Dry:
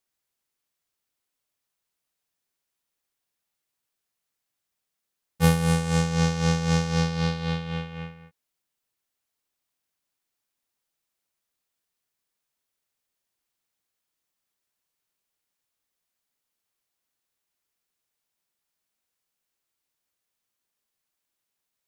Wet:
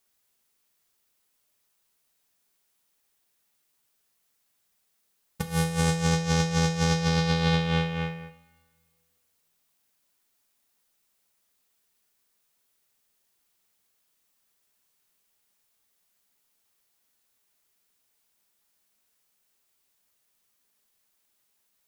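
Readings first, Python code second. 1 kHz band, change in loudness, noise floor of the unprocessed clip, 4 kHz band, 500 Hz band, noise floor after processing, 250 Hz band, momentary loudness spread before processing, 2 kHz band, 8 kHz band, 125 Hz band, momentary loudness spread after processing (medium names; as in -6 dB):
+0.5 dB, -1.0 dB, -83 dBFS, +2.5 dB, 0.0 dB, -73 dBFS, -1.5 dB, 12 LU, +1.0 dB, +1.5 dB, -1.5 dB, 9 LU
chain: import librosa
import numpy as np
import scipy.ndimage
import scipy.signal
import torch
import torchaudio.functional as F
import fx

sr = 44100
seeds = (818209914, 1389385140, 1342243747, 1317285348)

y = fx.high_shelf(x, sr, hz=8000.0, db=4.5)
y = fx.over_compress(y, sr, threshold_db=-26.0, ratio=-0.5)
y = fx.rev_double_slope(y, sr, seeds[0], early_s=0.42, late_s=1.8, knee_db=-18, drr_db=7.5)
y = y * 10.0 ** (3.0 / 20.0)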